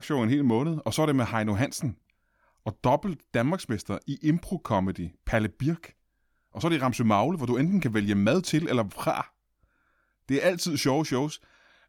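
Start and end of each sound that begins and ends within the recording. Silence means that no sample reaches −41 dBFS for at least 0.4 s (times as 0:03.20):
0:02.66–0:05.89
0:06.55–0:09.25
0:10.29–0:11.36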